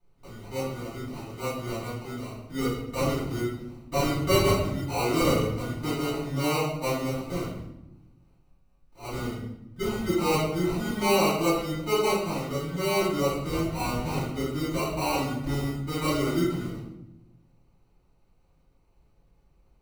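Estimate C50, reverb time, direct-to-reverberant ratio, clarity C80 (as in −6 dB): 0.5 dB, 0.90 s, −14.5 dB, 4.5 dB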